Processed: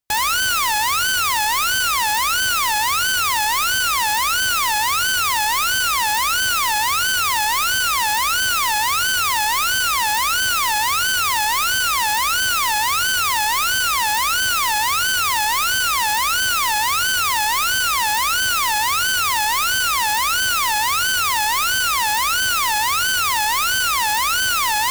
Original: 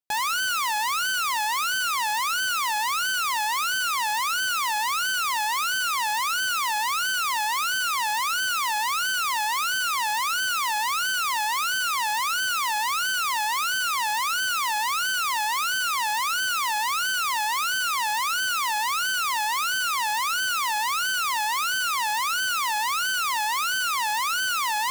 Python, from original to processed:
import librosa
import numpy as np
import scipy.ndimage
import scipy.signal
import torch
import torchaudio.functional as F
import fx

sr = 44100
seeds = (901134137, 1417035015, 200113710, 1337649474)

y = fx.envelope_flatten(x, sr, power=0.6)
y = fx.low_shelf_res(y, sr, hz=120.0, db=8.0, q=1.5)
y = y * librosa.db_to_amplitude(6.5)